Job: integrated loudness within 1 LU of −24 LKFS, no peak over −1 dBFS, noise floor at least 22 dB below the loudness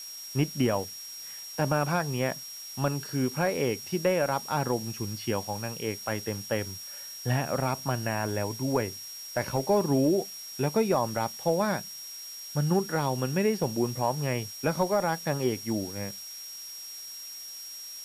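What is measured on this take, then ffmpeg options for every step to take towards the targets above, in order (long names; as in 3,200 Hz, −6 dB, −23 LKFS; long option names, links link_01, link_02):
interfering tone 5,600 Hz; level of the tone −40 dBFS; background noise floor −42 dBFS; target noise floor −52 dBFS; integrated loudness −29.5 LKFS; sample peak −14.5 dBFS; target loudness −24.0 LKFS
→ -af "bandreject=frequency=5600:width=30"
-af "afftdn=noise_reduction=10:noise_floor=-42"
-af "volume=5.5dB"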